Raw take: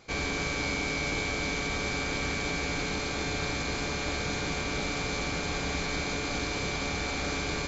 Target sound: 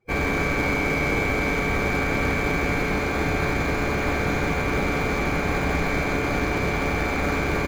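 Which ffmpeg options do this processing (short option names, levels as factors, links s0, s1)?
-filter_complex "[0:a]afftdn=nr=30:nf=-46,highshelf=f=2800:t=q:w=1.5:g=-9,asplit=2[s0][s1];[s1]acrusher=samples=16:mix=1:aa=0.000001,volume=0.299[s2];[s0][s2]amix=inputs=2:normalize=0,asplit=5[s3][s4][s5][s6][s7];[s4]adelay=165,afreqshift=-61,volume=0.316[s8];[s5]adelay=330,afreqshift=-122,volume=0.123[s9];[s6]adelay=495,afreqshift=-183,volume=0.0479[s10];[s7]adelay=660,afreqshift=-244,volume=0.0188[s11];[s3][s8][s9][s10][s11]amix=inputs=5:normalize=0,volume=2.11"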